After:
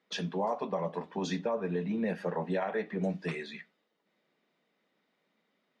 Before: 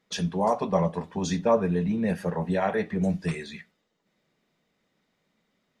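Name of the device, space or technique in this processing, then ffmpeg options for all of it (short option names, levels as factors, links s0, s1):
DJ mixer with the lows and highs turned down: -filter_complex "[0:a]acrossover=split=190 4900:gain=0.0794 1 0.178[s0][s1][s2];[s0][s1][s2]amix=inputs=3:normalize=0,alimiter=limit=0.0944:level=0:latency=1:release=216,volume=0.841"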